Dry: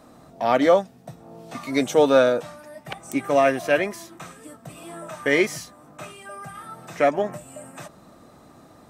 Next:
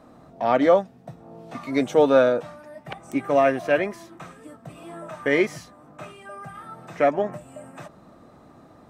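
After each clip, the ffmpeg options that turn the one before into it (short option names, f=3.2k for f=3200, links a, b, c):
-af "highshelf=f=3.9k:g=-12"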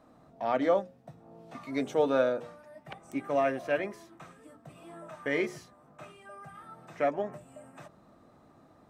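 -af "bandreject=f=60:t=h:w=6,bandreject=f=120:t=h:w=6,bandreject=f=180:t=h:w=6,bandreject=f=240:t=h:w=6,bandreject=f=300:t=h:w=6,bandreject=f=360:t=h:w=6,bandreject=f=420:t=h:w=6,bandreject=f=480:t=h:w=6,bandreject=f=540:t=h:w=6,volume=-8.5dB"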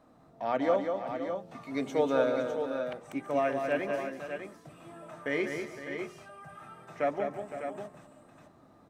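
-af "aecho=1:1:192|337|510|603|614:0.501|0.126|0.237|0.398|0.106,volume=-1.5dB"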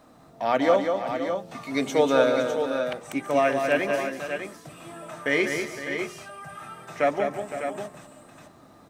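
-af "highshelf=f=2.2k:g=8.5,volume=6dB"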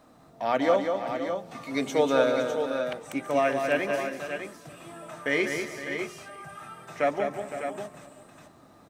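-af "aecho=1:1:398:0.0891,volume=-2.5dB"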